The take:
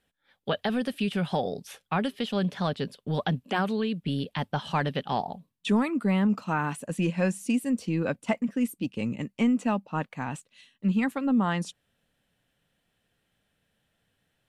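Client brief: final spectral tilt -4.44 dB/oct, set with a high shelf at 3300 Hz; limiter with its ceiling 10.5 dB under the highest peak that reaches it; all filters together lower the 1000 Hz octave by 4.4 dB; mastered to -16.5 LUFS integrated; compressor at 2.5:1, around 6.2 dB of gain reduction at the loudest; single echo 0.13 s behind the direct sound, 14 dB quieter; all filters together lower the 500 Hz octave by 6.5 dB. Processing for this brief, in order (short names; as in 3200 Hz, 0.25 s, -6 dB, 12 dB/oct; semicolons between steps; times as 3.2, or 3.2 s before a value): bell 500 Hz -7.5 dB; bell 1000 Hz -4 dB; high shelf 3300 Hz +9 dB; compressor 2.5:1, threshold -31 dBFS; limiter -27 dBFS; echo 0.13 s -14 dB; gain +19.5 dB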